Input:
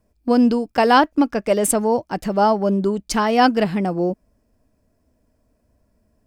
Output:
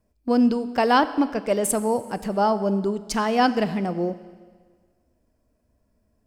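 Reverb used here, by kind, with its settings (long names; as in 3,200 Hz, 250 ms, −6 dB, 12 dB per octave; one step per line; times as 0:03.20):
four-comb reverb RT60 1.6 s, combs from 29 ms, DRR 13.5 dB
level −4.5 dB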